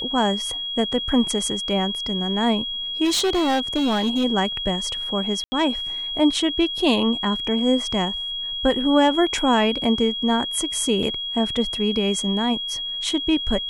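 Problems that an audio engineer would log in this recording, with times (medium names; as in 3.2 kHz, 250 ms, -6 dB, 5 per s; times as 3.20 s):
whine 3.3 kHz -26 dBFS
3.04–4.25 s: clipped -17 dBFS
5.44–5.52 s: dropout 80 ms
11.03 s: dropout 3.2 ms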